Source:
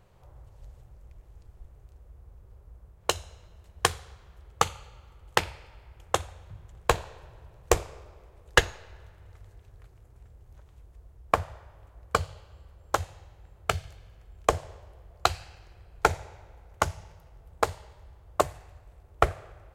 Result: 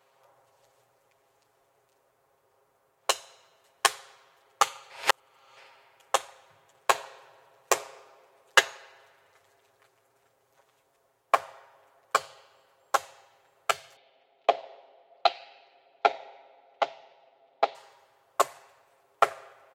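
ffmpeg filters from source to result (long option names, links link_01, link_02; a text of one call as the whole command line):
ffmpeg -i in.wav -filter_complex "[0:a]asettb=1/sr,asplit=3[link_01][link_02][link_03];[link_01]atrim=end=13.964[link_04];[link_02]atrim=start=13.96:end=17.75,asetpts=PTS-STARTPTS,afade=type=in:duration=0.004:curve=qsin,afade=type=out:start_time=3.786:duration=0.004:curve=qsin,highpass=240,equalizer=frequency=270:width_type=q:width=4:gain=5,equalizer=frequency=720:width_type=q:width=4:gain=7,equalizer=frequency=1100:width_type=q:width=4:gain=-10,equalizer=frequency=1600:width_type=q:width=4:gain=-9,equalizer=frequency=3800:width_type=q:width=4:gain=4,lowpass=frequency=3900:width=0.5412,lowpass=frequency=3900:width=1.3066[link_05];[link_03]atrim=start=17.746[link_06];[link_04][link_05]acrossfade=duration=0.004:curve1=hsin:curve2=qsin[link_07];[link_07][link_06]acrossfade=duration=0.004:curve1=qsin:curve2=hsin,asplit=3[link_08][link_09][link_10];[link_08]atrim=end=4.902[link_11];[link_09]atrim=start=4.898:end=5.572,asetpts=PTS-STARTPTS,areverse[link_12];[link_10]atrim=start=5.568[link_13];[link_11][link_12]acrossfade=duration=0.004:curve1=hsin:curve2=hsin[link_14];[link_14][link_13]acrossfade=duration=0.004:curve1=hsin:curve2=hsin,highpass=540,aecho=1:1:7.4:0.97,volume=-1dB" out.wav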